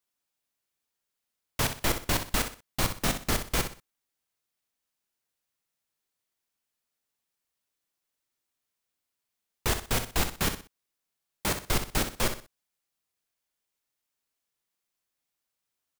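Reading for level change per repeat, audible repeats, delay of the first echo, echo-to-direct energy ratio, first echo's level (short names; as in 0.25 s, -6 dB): -10.5 dB, 3, 62 ms, -8.5 dB, -9.0 dB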